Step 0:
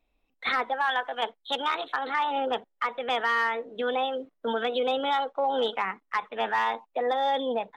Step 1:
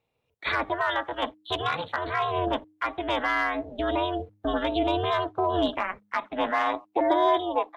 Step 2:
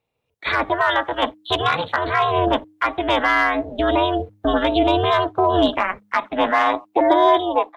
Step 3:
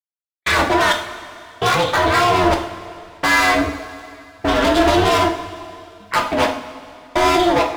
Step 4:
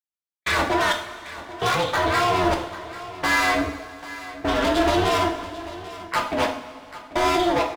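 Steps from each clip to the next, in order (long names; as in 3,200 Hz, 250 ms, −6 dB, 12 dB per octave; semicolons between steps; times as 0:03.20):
high-pass filter sweep 290 Hz → 790 Hz, 0:05.95–0:07.75; ring modulation 180 Hz; hum removal 102.9 Hz, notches 3; level +2 dB
automatic gain control gain up to 8.5 dB
gain into a clipping stage and back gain 22 dB; gate pattern "..xx...xxxx." 65 BPM −60 dB; coupled-rooms reverb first 0.48 s, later 2.6 s, from −15 dB, DRR 2 dB; level +8 dB
single-tap delay 790 ms −16 dB; level −5.5 dB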